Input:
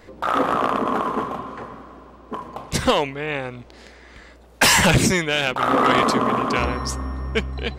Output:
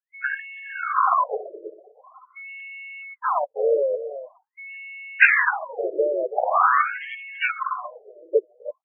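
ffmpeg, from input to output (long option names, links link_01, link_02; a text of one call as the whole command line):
ffmpeg -i in.wav -filter_complex "[0:a]bandreject=frequency=900:width=9.7,afftfilt=real='re*gte(hypot(re,im),0.224)':imag='im*gte(hypot(re,im),0.224)':win_size=1024:overlap=0.75,acompressor=mode=upward:threshold=-22dB:ratio=2.5,highpass=frequency=110:width=0.5412,highpass=frequency=110:width=1.3066,highshelf=frequency=5700:gain=6,acompressor=threshold=-19dB:ratio=10,aemphasis=mode=production:type=75kf,atempo=0.88,aeval=exprs='val(0)+0.00562*sin(2*PI*2200*n/s)':channel_layout=same,asplit=3[link_01][link_02][link_03];[link_02]asetrate=52444,aresample=44100,atempo=0.840896,volume=-13dB[link_04];[link_03]asetrate=55563,aresample=44100,atempo=0.793701,volume=-10dB[link_05];[link_01][link_04][link_05]amix=inputs=3:normalize=0,asplit=2[link_06][link_07];[link_07]aecho=0:1:330|660|990:0.237|0.0664|0.0186[link_08];[link_06][link_08]amix=inputs=2:normalize=0,afftfilt=real='re*between(b*sr/1024,450*pow(2500/450,0.5+0.5*sin(2*PI*0.45*pts/sr))/1.41,450*pow(2500/450,0.5+0.5*sin(2*PI*0.45*pts/sr))*1.41)':imag='im*between(b*sr/1024,450*pow(2500/450,0.5+0.5*sin(2*PI*0.45*pts/sr))/1.41,450*pow(2500/450,0.5+0.5*sin(2*PI*0.45*pts/sr))*1.41)':win_size=1024:overlap=0.75,volume=7dB" out.wav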